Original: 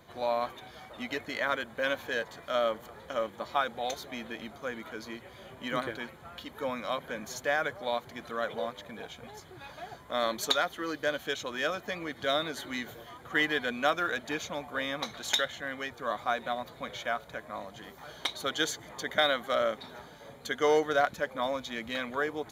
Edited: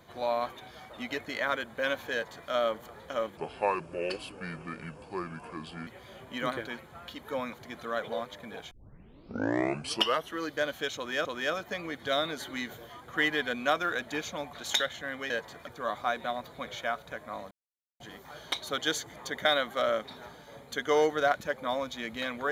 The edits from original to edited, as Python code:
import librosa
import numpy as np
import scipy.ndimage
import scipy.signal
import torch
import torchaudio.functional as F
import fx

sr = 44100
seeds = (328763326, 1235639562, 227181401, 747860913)

y = fx.edit(x, sr, fx.duplicate(start_s=2.13, length_s=0.37, to_s=15.89),
    fx.speed_span(start_s=3.37, length_s=1.8, speed=0.72),
    fx.cut(start_s=6.83, length_s=1.16),
    fx.tape_start(start_s=9.17, length_s=1.65),
    fx.repeat(start_s=11.42, length_s=0.29, count=2),
    fx.cut(start_s=14.7, length_s=0.42),
    fx.insert_silence(at_s=17.73, length_s=0.49), tone=tone)